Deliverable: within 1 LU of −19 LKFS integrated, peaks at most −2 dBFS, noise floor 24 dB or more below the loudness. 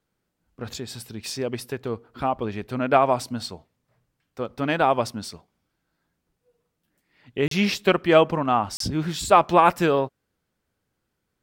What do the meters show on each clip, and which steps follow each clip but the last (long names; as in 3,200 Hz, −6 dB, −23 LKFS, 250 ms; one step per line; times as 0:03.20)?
number of dropouts 2; longest dropout 33 ms; integrated loudness −22.5 LKFS; sample peak −4.0 dBFS; target loudness −19.0 LKFS
→ repair the gap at 0:07.48/0:08.77, 33 ms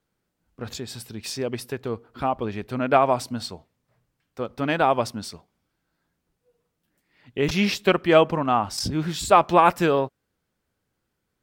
number of dropouts 0; integrated loudness −22.5 LKFS; sample peak −4.0 dBFS; target loudness −19.0 LKFS
→ level +3.5 dB
brickwall limiter −2 dBFS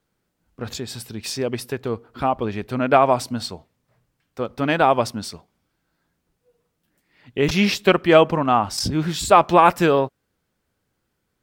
integrated loudness −19.5 LKFS; sample peak −2.0 dBFS; background noise floor −75 dBFS